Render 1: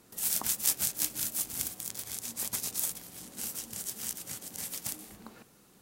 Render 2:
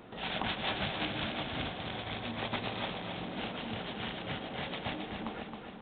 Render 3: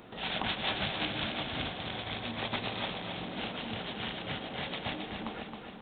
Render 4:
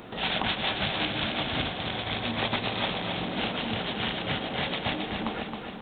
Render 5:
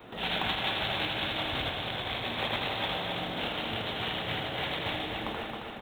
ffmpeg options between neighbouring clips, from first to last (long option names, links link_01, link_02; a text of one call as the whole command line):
ffmpeg -i in.wav -af "equalizer=frequency=700:width=1.7:gain=6,aresample=8000,asoftclip=type=tanh:threshold=-33dB,aresample=44100,aecho=1:1:269|538|807|1076|1345|1614|1883:0.473|0.27|0.154|0.0876|0.0499|0.0285|0.0162,volume=9dB" out.wav
ffmpeg -i in.wav -af "highshelf=frequency=3900:gain=7" out.wav
ffmpeg -i in.wav -af "alimiter=limit=-24dB:level=0:latency=1:release=463,volume=7.5dB" out.wav
ffmpeg -i in.wav -af "adynamicequalizer=threshold=0.00355:dfrequency=210:dqfactor=1.8:tfrequency=210:tqfactor=1.8:attack=5:release=100:ratio=0.375:range=4:mode=cutabove:tftype=bell,aecho=1:1:80|172|277.8|399.5|539.4:0.631|0.398|0.251|0.158|0.1,acrusher=bits=7:mode=log:mix=0:aa=0.000001,volume=-4dB" out.wav